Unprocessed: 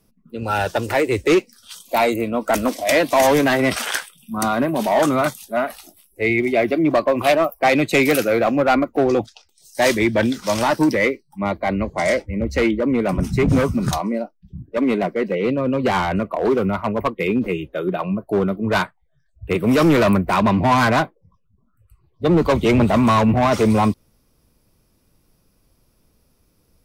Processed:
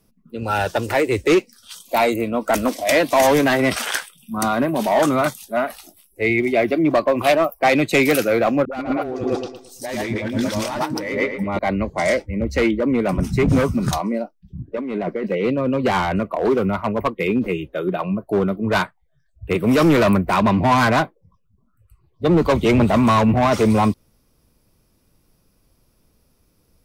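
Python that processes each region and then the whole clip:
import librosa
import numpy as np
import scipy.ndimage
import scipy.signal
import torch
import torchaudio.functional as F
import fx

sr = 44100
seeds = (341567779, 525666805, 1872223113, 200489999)

y = fx.chain(x, sr, fx.echo_filtered(ms=113, feedback_pct=34, hz=3900.0, wet_db=-7),
    fx.over_compress(threshold_db=-24.0, ratio=-1.0),
    fx.dispersion(late='highs', ms=68.0, hz=340.0), at=(8.65, 11.59))
y = fx.chain(y, sr, fx.lowpass(hz=2900.0, slope=6),
    fx.over_compress(threshold_db=-24.0, ratio=-1.0), at=(14.59, 15.27))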